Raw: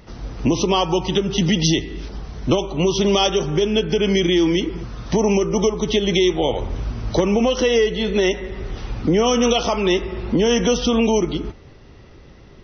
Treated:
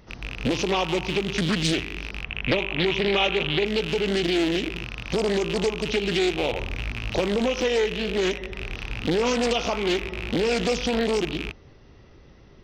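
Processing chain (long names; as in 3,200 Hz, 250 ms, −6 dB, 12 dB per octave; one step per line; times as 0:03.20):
loose part that buzzes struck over −30 dBFS, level −13 dBFS
0:02.24–0:03.66: high shelf with overshoot 3,600 Hz −9 dB, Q 3
highs frequency-modulated by the lows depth 0.66 ms
level −6 dB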